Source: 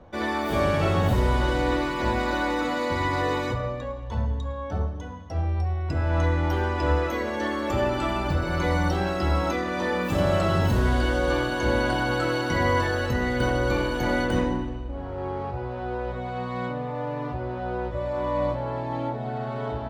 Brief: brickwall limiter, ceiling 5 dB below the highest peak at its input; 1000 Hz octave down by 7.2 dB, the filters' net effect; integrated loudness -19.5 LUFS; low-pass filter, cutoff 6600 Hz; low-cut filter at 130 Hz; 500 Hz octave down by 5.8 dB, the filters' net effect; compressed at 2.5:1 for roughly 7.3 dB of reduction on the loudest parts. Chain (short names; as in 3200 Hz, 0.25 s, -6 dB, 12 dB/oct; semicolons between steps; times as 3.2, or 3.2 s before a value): HPF 130 Hz; LPF 6600 Hz; bell 500 Hz -5 dB; bell 1000 Hz -7.5 dB; compressor 2.5:1, threshold -34 dBFS; gain +17.5 dB; limiter -9.5 dBFS